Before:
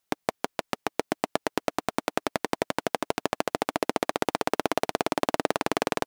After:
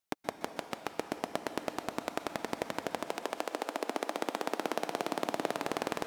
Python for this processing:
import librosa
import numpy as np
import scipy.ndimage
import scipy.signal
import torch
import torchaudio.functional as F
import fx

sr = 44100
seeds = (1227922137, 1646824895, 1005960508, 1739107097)

y = fx.highpass(x, sr, hz=fx.line((3.04, 330.0), (5.65, 110.0)), slope=24, at=(3.04, 5.65), fade=0.02)
y = fx.rev_plate(y, sr, seeds[0], rt60_s=1.9, hf_ratio=1.0, predelay_ms=115, drr_db=8.0)
y = y * 10.0 ** (-8.0 / 20.0)